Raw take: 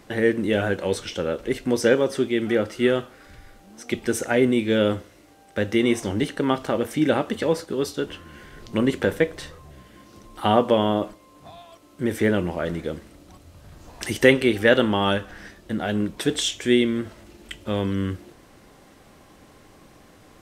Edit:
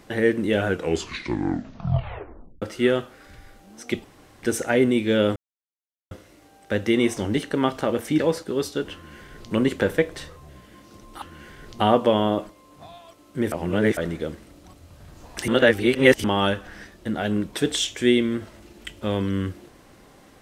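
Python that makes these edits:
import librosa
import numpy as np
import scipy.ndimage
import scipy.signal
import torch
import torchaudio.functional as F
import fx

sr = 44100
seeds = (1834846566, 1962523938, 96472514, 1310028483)

y = fx.edit(x, sr, fx.tape_stop(start_s=0.63, length_s=1.99),
    fx.insert_room_tone(at_s=4.04, length_s=0.39),
    fx.insert_silence(at_s=4.97, length_s=0.75),
    fx.cut(start_s=7.05, length_s=0.36),
    fx.duplicate(start_s=8.16, length_s=0.58, to_s=10.44),
    fx.reverse_span(start_s=12.16, length_s=0.45),
    fx.reverse_span(start_s=14.12, length_s=0.76), tone=tone)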